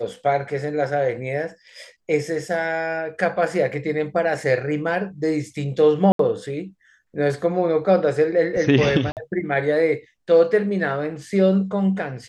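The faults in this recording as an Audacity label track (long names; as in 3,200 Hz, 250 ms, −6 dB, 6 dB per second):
6.120000	6.190000	drop-out 73 ms
9.120000	9.170000	drop-out 48 ms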